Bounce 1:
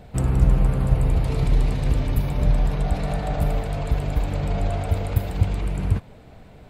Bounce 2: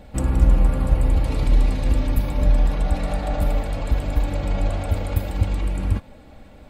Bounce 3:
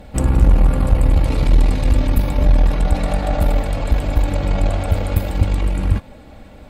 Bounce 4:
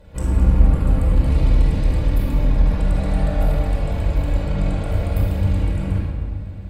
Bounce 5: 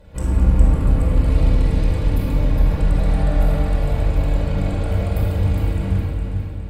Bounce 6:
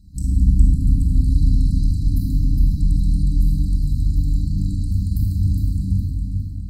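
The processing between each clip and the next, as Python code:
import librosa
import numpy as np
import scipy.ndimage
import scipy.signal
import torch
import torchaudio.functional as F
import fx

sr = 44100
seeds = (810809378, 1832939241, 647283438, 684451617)

y1 = x + 0.57 * np.pad(x, (int(3.6 * sr / 1000.0), 0))[:len(x)]
y2 = fx.tube_stage(y1, sr, drive_db=11.0, bias=0.55)
y2 = F.gain(torch.from_numpy(y2), 7.5).numpy()
y3 = fx.room_shoebox(y2, sr, seeds[0], volume_m3=2700.0, walls='mixed', distance_m=4.9)
y3 = F.gain(torch.from_numpy(y3), -12.5).numpy()
y4 = fx.echo_feedback(y3, sr, ms=411, feedback_pct=38, wet_db=-7.0)
y5 = fx.brickwall_bandstop(y4, sr, low_hz=300.0, high_hz=3900.0)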